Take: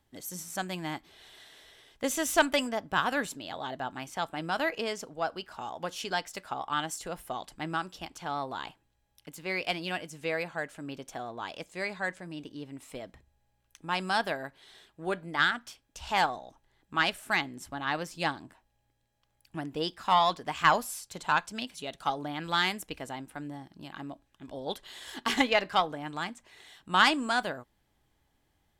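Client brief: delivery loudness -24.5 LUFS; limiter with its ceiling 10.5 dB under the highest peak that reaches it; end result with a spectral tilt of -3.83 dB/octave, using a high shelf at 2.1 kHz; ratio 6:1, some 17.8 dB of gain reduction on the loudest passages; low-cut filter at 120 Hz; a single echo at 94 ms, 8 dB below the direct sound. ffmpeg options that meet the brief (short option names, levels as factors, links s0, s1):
-af "highpass=120,highshelf=f=2100:g=-4.5,acompressor=threshold=0.0126:ratio=6,alimiter=level_in=2.51:limit=0.0631:level=0:latency=1,volume=0.398,aecho=1:1:94:0.398,volume=10"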